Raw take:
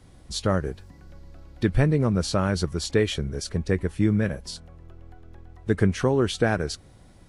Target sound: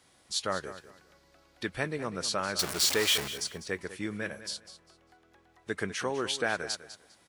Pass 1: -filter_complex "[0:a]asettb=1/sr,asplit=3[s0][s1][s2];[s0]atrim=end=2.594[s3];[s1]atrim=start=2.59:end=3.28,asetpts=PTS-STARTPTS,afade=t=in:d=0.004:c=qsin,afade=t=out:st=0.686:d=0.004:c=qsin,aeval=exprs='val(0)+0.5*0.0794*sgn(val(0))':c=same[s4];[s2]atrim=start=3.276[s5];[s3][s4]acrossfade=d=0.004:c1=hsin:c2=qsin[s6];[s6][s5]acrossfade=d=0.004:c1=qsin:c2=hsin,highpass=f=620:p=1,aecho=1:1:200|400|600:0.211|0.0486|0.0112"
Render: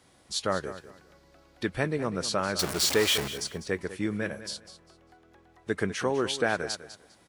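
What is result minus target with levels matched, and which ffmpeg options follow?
500 Hz band +3.0 dB
-filter_complex "[0:a]asettb=1/sr,asplit=3[s0][s1][s2];[s0]atrim=end=2.594[s3];[s1]atrim=start=2.59:end=3.28,asetpts=PTS-STARTPTS,afade=t=in:d=0.004:c=qsin,afade=t=out:st=0.686:d=0.004:c=qsin,aeval=exprs='val(0)+0.5*0.0794*sgn(val(0))':c=same[s4];[s2]atrim=start=3.276[s5];[s3][s4]acrossfade=d=0.004:c1=hsin:c2=qsin[s6];[s6][s5]acrossfade=d=0.004:c1=qsin:c2=hsin,highpass=f=1300:p=1,aecho=1:1:200|400|600:0.211|0.0486|0.0112"

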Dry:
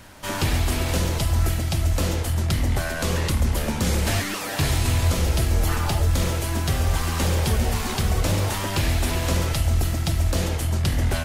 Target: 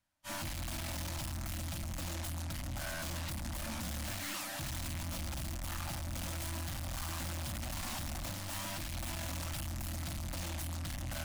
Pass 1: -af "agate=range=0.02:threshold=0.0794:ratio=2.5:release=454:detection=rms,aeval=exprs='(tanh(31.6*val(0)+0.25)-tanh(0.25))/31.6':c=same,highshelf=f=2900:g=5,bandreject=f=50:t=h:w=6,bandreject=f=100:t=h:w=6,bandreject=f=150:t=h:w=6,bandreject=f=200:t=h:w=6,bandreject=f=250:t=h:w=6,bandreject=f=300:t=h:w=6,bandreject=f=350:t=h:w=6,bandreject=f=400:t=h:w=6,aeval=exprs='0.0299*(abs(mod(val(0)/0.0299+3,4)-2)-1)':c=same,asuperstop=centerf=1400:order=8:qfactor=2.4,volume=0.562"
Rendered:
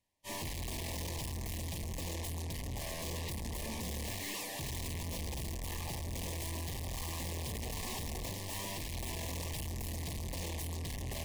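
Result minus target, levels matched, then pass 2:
500 Hz band +3.5 dB
-af "agate=range=0.02:threshold=0.0794:ratio=2.5:release=454:detection=rms,aeval=exprs='(tanh(31.6*val(0)+0.25)-tanh(0.25))/31.6':c=same,highshelf=f=2900:g=5,bandreject=f=50:t=h:w=6,bandreject=f=100:t=h:w=6,bandreject=f=150:t=h:w=6,bandreject=f=200:t=h:w=6,bandreject=f=250:t=h:w=6,bandreject=f=300:t=h:w=6,bandreject=f=350:t=h:w=6,bandreject=f=400:t=h:w=6,aeval=exprs='0.0299*(abs(mod(val(0)/0.0299+3,4)-2)-1)':c=same,asuperstop=centerf=430:order=8:qfactor=2.4,volume=0.562"

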